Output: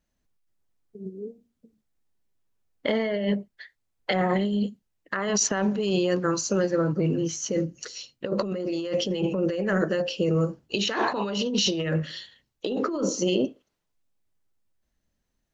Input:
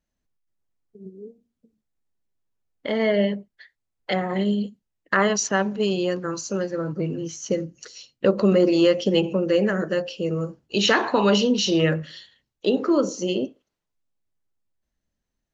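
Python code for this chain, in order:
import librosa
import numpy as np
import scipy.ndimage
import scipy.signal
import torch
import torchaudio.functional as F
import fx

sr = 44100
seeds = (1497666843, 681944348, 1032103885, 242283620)

y = fx.over_compress(x, sr, threshold_db=-25.0, ratio=-1.0)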